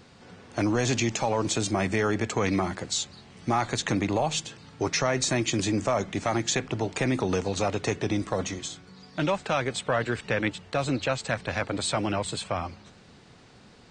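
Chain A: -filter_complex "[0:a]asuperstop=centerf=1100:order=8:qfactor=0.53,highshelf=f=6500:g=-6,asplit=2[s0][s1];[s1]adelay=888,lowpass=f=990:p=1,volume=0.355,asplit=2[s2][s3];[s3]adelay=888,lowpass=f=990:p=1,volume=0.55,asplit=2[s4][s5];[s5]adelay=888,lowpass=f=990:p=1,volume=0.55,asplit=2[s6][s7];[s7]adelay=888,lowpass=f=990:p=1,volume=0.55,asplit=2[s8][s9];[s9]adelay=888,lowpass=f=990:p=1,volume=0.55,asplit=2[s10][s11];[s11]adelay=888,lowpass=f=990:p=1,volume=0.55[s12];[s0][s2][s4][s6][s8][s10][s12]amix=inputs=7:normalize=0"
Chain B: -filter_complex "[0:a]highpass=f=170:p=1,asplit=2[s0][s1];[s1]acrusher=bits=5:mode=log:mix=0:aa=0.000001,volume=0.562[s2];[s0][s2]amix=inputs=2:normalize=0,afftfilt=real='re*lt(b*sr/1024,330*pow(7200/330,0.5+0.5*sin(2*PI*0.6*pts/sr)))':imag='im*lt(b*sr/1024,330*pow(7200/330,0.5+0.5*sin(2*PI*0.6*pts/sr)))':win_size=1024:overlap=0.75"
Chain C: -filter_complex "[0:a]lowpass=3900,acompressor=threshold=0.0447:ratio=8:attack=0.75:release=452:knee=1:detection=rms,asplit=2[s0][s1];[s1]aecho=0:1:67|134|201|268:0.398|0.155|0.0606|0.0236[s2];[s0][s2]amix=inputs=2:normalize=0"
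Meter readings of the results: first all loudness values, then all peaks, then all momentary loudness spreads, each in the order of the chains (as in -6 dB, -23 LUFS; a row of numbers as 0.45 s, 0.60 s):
-30.0 LUFS, -26.5 LUFS, -36.0 LUFS; -14.5 dBFS, -10.0 dBFS, -21.5 dBFS; 9 LU, 10 LU, 10 LU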